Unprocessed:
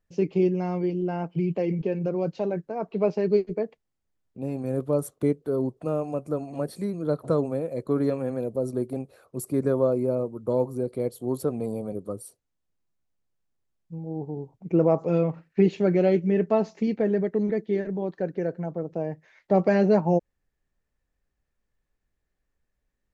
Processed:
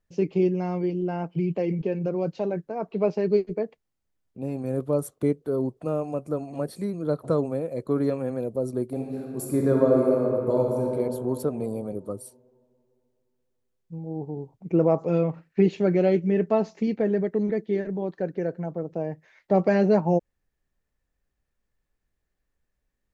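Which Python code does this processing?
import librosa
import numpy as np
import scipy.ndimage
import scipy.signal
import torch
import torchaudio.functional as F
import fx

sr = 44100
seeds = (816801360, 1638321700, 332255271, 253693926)

y = fx.reverb_throw(x, sr, start_s=8.9, length_s=1.95, rt60_s=2.7, drr_db=-1.5)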